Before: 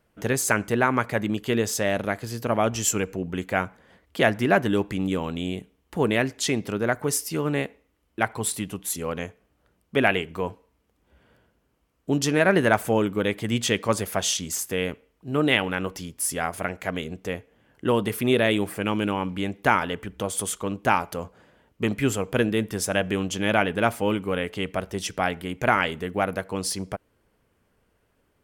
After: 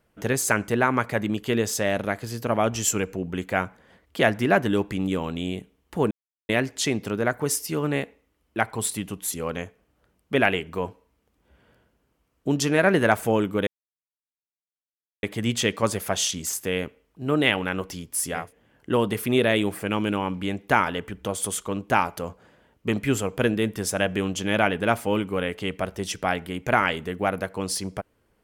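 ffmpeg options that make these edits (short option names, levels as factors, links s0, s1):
-filter_complex "[0:a]asplit=4[s0][s1][s2][s3];[s0]atrim=end=6.11,asetpts=PTS-STARTPTS,afade=t=out:st=6.106:d=0.004:c=hsin,apad=pad_dur=0.38[s4];[s1]atrim=start=6.11:end=13.29,asetpts=PTS-STARTPTS,afade=t=in:d=0.004:c=hsin,afade=t=out:st=7.176:d=0.004:c=hsin,apad=pad_dur=1.56[s5];[s2]atrim=start=13.29:end=16.59,asetpts=PTS-STARTPTS,afade=t=in:d=0.004:c=hsin[s6];[s3]atrim=start=17.24[s7];[s4][s5][s6]concat=n=3:v=0:a=1[s8];[s8][s7]acrossfade=d=0.24:c1=tri:c2=tri"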